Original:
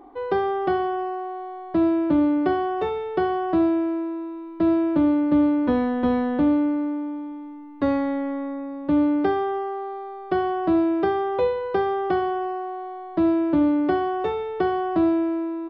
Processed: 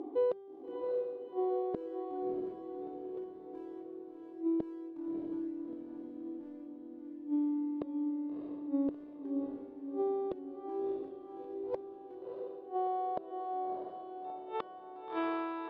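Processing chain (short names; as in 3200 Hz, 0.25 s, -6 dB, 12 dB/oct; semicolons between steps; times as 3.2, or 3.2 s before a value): resonant high shelf 2400 Hz +10.5 dB, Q 1.5; upward compressor, threshold -43 dBFS; in parallel at +2.5 dB: limiter -18 dBFS, peak gain reduction 8 dB; on the sum: band-pass sweep 350 Hz -> 1400 Hz, 11.84–15.23; hard clip -13.5 dBFS, distortion -21 dB; flipped gate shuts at -23 dBFS, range -31 dB; on a send: diffused feedback echo 0.648 s, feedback 52%, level -3 dB; 11.63–12.4 on the sum: Doppler distortion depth 0.17 ms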